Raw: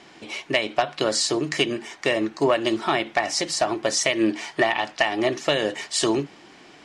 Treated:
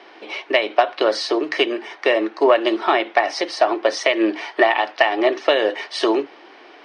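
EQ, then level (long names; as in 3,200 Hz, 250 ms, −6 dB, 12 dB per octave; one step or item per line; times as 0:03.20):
Savitzky-Golay smoothing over 15 samples
high-pass filter 350 Hz 24 dB per octave
high-shelf EQ 2,900 Hz −9 dB
+7.0 dB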